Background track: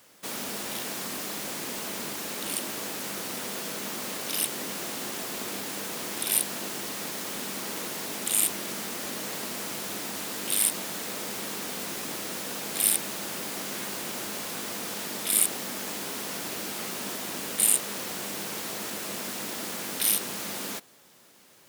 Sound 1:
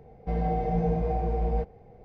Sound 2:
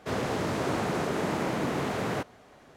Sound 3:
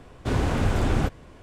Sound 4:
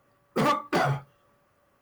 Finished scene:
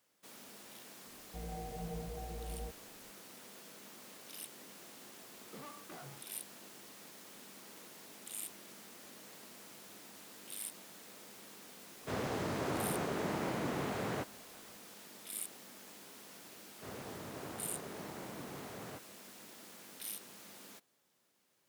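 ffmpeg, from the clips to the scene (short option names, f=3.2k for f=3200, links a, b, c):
-filter_complex "[2:a]asplit=2[a][b];[0:a]volume=-19.5dB[c];[4:a]acompressor=threshold=-33dB:ratio=6:attack=3.2:release=140:knee=1:detection=peak[d];[1:a]atrim=end=2.04,asetpts=PTS-STARTPTS,volume=-17dB,afade=t=in:d=0.004:c=hsin,afade=t=out:st=2.036:d=0.004:c=hsin,adelay=1070[e];[d]atrim=end=1.81,asetpts=PTS-STARTPTS,volume=-16dB,afade=t=in:d=0.004:c=hsin,afade=t=out:st=1.806:d=0.004:c=hsin,adelay=227997S[f];[a]atrim=end=2.76,asetpts=PTS-STARTPTS,volume=-7.5dB,afade=t=in:d=0.004:c=hsin,afade=t=out:st=2.756:d=0.004:c=hsin,adelay=12010[g];[b]atrim=end=2.76,asetpts=PTS-STARTPTS,volume=-17.5dB,afade=t=in:d=0.004:c=hsin,afade=t=out:st=2.756:d=0.004:c=hsin,adelay=16760[h];[c][e][f][g][h]amix=inputs=5:normalize=0"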